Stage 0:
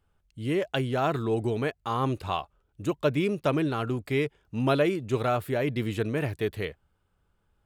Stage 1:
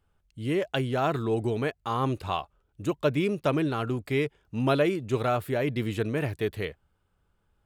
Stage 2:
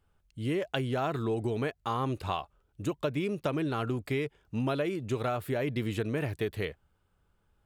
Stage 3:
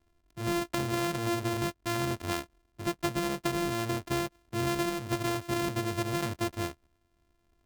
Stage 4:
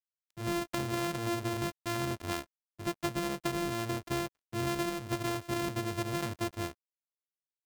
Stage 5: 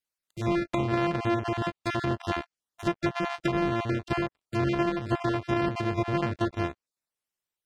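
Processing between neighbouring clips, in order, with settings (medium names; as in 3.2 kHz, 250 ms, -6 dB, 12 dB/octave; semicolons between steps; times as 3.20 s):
no audible change
compression, threshold -27 dBFS, peak gain reduction 8.5 dB
sorted samples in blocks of 128 samples
crossover distortion -57.5 dBFS; trim -2.5 dB
random holes in the spectrogram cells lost 22%; low-pass that closes with the level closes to 2.6 kHz, closed at -31.5 dBFS; trim +7.5 dB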